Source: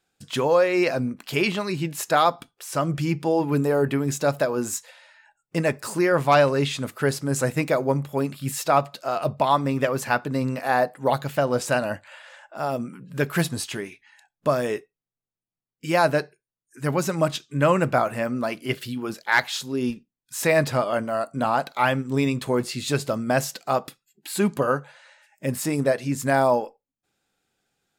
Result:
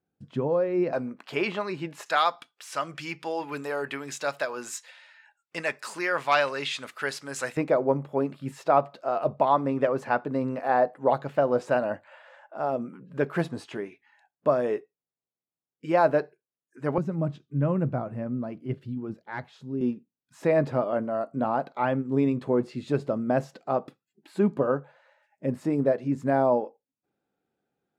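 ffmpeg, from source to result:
-af "asetnsamples=n=441:p=0,asendcmd='0.93 bandpass f 850;2.06 bandpass f 2300;7.57 bandpass f 510;16.98 bandpass f 120;19.81 bandpass f 330',bandpass=f=170:t=q:w=0.63:csg=0"

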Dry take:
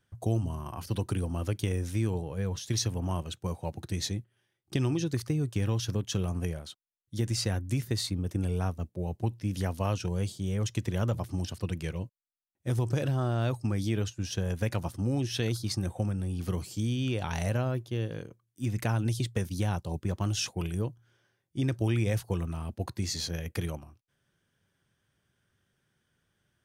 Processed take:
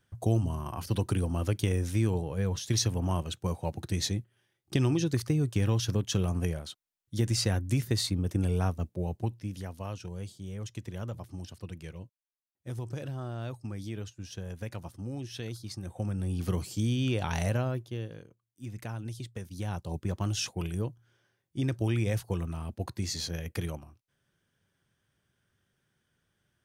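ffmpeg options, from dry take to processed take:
-af "volume=20.5dB,afade=t=out:st=8.92:d=0.7:silence=0.298538,afade=t=in:st=15.83:d=0.49:silence=0.316228,afade=t=out:st=17.38:d=0.86:silence=0.281838,afade=t=in:st=19.49:d=0.46:silence=0.375837"

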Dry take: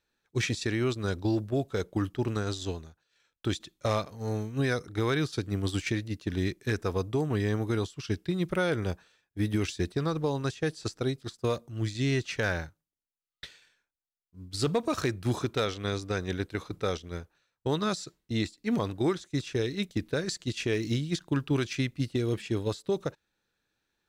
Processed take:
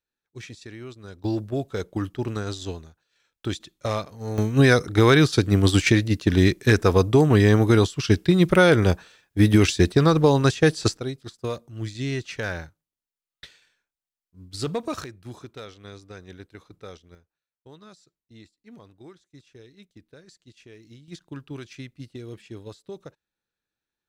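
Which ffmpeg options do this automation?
-af "asetnsamples=n=441:p=0,asendcmd='1.24 volume volume 1.5dB;4.38 volume volume 12dB;10.97 volume volume -0.5dB;15.04 volume volume -11dB;17.15 volume volume -19dB;21.08 volume volume -9.5dB',volume=-11dB"

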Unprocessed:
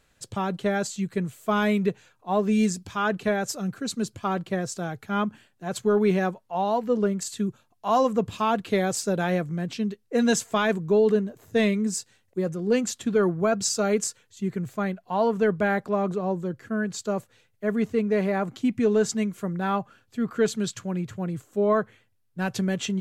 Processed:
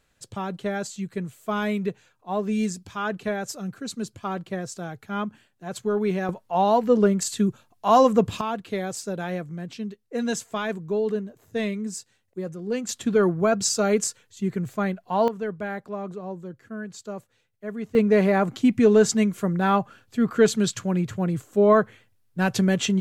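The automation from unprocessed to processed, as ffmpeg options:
-af "asetnsamples=n=441:p=0,asendcmd='6.29 volume volume 5dB;8.41 volume volume -5dB;12.89 volume volume 2dB;15.28 volume volume -7.5dB;17.95 volume volume 5dB',volume=-3dB"

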